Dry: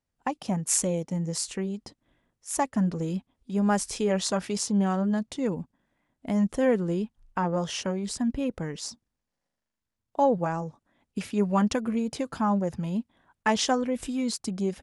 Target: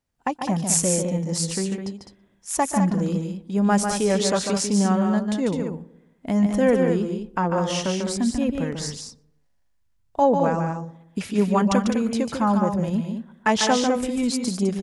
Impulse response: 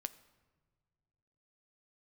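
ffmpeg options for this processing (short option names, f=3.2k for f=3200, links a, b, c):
-filter_complex "[0:a]asplit=2[a][b];[b]aecho=0:1:145.8|207:0.501|0.398[c];[a][c]amix=inputs=2:normalize=0,asplit=3[d][e][f];[d]afade=t=out:st=8.79:d=0.02[g];[e]asubboost=boost=4:cutoff=120,afade=t=in:st=8.79:d=0.02,afade=t=out:st=10.2:d=0.02[h];[f]afade=t=in:st=10.2:d=0.02[i];[g][h][i]amix=inputs=3:normalize=0,asplit=2[j][k];[k]adelay=121,lowpass=f=1.1k:p=1,volume=-19.5dB,asplit=2[l][m];[m]adelay=121,lowpass=f=1.1k:p=1,volume=0.52,asplit=2[n][o];[o]adelay=121,lowpass=f=1.1k:p=1,volume=0.52,asplit=2[p][q];[q]adelay=121,lowpass=f=1.1k:p=1,volume=0.52[r];[l][n][p][r]amix=inputs=4:normalize=0[s];[j][s]amix=inputs=2:normalize=0,volume=4dB"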